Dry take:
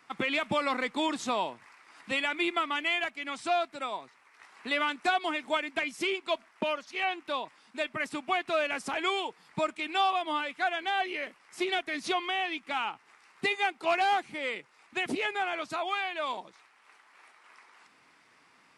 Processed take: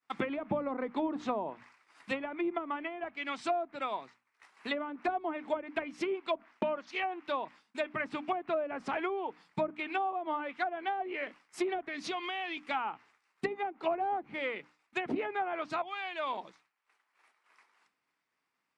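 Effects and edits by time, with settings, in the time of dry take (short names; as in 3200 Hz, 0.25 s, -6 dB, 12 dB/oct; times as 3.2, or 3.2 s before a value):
11.85–12.57 compressor 3:1, threshold -34 dBFS
15.82–16.38 fade in, from -13 dB
whole clip: expander -48 dBFS; treble ducked by the level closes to 600 Hz, closed at -25 dBFS; notches 60/120/180/240/300 Hz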